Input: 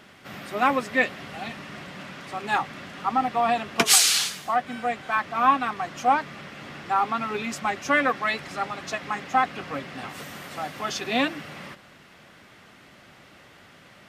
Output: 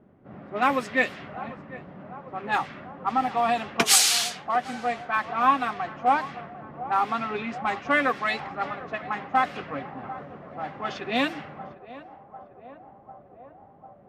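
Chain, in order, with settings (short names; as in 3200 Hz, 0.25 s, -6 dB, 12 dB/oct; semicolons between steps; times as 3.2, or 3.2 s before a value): low-pass opened by the level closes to 460 Hz, open at -20 dBFS; narrowing echo 0.748 s, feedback 80%, band-pass 630 Hz, level -15 dB; gain -1 dB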